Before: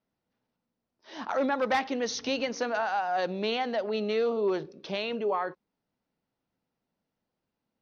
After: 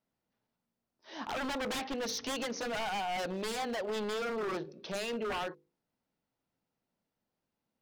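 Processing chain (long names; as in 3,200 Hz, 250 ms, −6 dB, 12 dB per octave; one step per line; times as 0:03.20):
mains-hum notches 50/100/150/200/250/300/350/400/450/500 Hz
wave folding −28 dBFS
level −2 dB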